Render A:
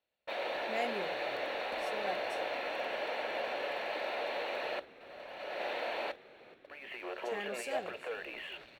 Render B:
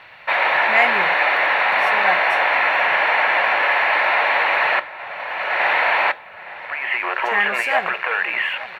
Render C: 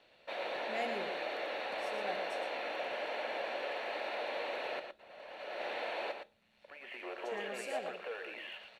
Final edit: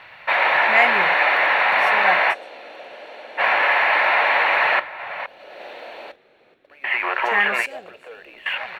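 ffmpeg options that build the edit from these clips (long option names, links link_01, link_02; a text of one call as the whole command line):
ffmpeg -i take0.wav -i take1.wav -i take2.wav -filter_complex "[0:a]asplit=2[link_01][link_02];[1:a]asplit=4[link_03][link_04][link_05][link_06];[link_03]atrim=end=2.35[link_07];[2:a]atrim=start=2.31:end=3.41[link_08];[link_04]atrim=start=3.37:end=5.262[link_09];[link_01]atrim=start=5.258:end=6.842[link_10];[link_05]atrim=start=6.838:end=7.662[link_11];[link_02]atrim=start=7.658:end=8.462[link_12];[link_06]atrim=start=8.458[link_13];[link_07][link_08]acrossfade=duration=0.04:curve1=tri:curve2=tri[link_14];[link_14][link_09]acrossfade=duration=0.04:curve1=tri:curve2=tri[link_15];[link_15][link_10]acrossfade=duration=0.004:curve1=hsin:curve2=hsin[link_16];[link_16][link_11]acrossfade=duration=0.004:curve1=hsin:curve2=hsin[link_17];[link_17][link_12]acrossfade=duration=0.004:curve1=hsin:curve2=hsin[link_18];[link_18][link_13]acrossfade=duration=0.004:curve1=hsin:curve2=hsin" out.wav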